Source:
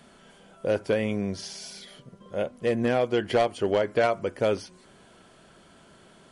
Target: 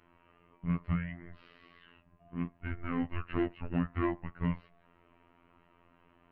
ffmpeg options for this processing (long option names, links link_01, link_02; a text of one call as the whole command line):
ffmpeg -i in.wav -af "highpass=frequency=350:width_type=q:width=0.5412,highpass=frequency=350:width_type=q:width=1.307,lowpass=frequency=2900:width_type=q:width=0.5176,lowpass=frequency=2900:width_type=q:width=0.7071,lowpass=frequency=2900:width_type=q:width=1.932,afreqshift=-360,afftfilt=real='hypot(re,im)*cos(PI*b)':imag='0':win_size=2048:overlap=0.75,volume=-4dB" out.wav